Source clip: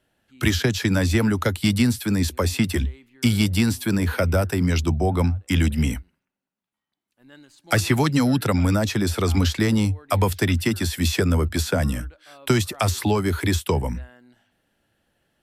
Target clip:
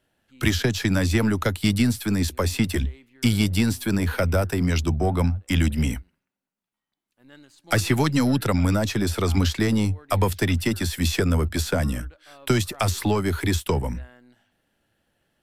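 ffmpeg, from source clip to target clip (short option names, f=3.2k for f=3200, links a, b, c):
-af "aeval=exprs='if(lt(val(0),0),0.708*val(0),val(0))':c=same"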